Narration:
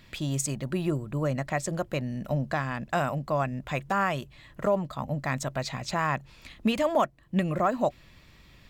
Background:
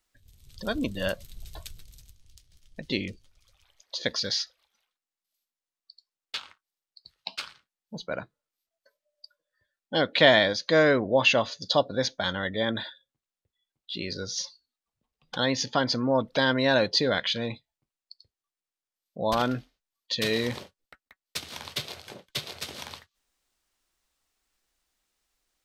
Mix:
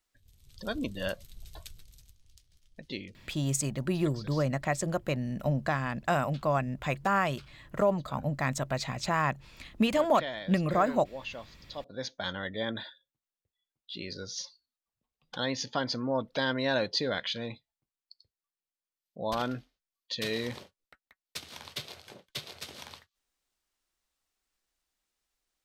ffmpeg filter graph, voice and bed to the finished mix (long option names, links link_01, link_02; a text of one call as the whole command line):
ffmpeg -i stem1.wav -i stem2.wav -filter_complex "[0:a]adelay=3150,volume=-0.5dB[link_01];[1:a]volume=9dB,afade=type=out:start_time=2.42:duration=0.99:silence=0.177828,afade=type=in:start_time=11.75:duration=0.52:silence=0.211349[link_02];[link_01][link_02]amix=inputs=2:normalize=0" out.wav